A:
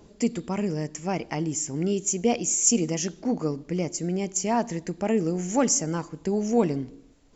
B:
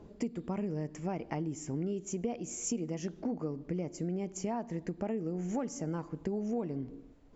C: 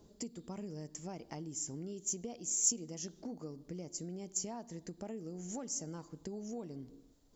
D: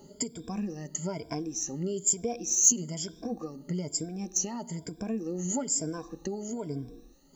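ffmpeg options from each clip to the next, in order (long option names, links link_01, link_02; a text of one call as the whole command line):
ffmpeg -i in.wav -af "lowpass=frequency=1200:poles=1,acompressor=threshold=-32dB:ratio=6" out.wav
ffmpeg -i in.wav -af "aexciter=amount=5.6:drive=4.9:freq=3500,aeval=exprs='0.376*(cos(1*acos(clip(val(0)/0.376,-1,1)))-cos(1*PI/2))+0.00596*(cos(7*acos(clip(val(0)/0.376,-1,1)))-cos(7*PI/2))':channel_layout=same,volume=-8dB" out.wav
ffmpeg -i in.wav -filter_complex "[0:a]afftfilt=real='re*pow(10,20/40*sin(2*PI*(1.7*log(max(b,1)*sr/1024/100)/log(2)-(1.1)*(pts-256)/sr)))':imag='im*pow(10,20/40*sin(2*PI*(1.7*log(max(b,1)*sr/1024/100)/log(2)-(1.1)*(pts-256)/sr)))':win_size=1024:overlap=0.75,asplit=2[link_01][link_02];[link_02]volume=24dB,asoftclip=hard,volume=-24dB,volume=-12dB[link_03];[link_01][link_03]amix=inputs=2:normalize=0,volume=4dB" out.wav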